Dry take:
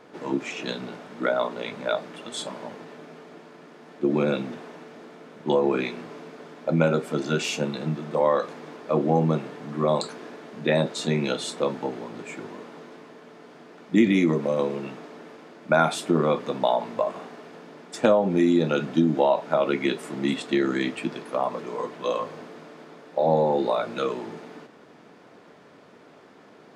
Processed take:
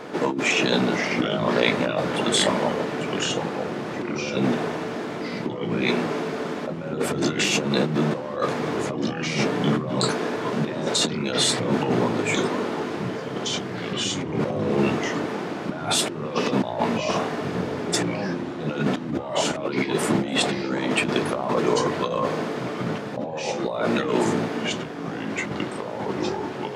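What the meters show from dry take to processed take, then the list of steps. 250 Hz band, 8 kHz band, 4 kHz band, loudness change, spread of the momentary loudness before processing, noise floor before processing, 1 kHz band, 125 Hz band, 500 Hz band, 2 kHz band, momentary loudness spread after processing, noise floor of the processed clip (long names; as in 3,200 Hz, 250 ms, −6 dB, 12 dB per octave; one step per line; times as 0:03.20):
+1.5 dB, +11.5 dB, +9.5 dB, +0.5 dB, 21 LU, −51 dBFS, +1.5 dB, +2.5 dB, 0.0 dB, +6.0 dB, 8 LU, −32 dBFS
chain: compressor whose output falls as the input rises −33 dBFS, ratio −1
delay with pitch and tempo change per echo 437 ms, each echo −3 semitones, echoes 3, each echo −6 dB
level +7 dB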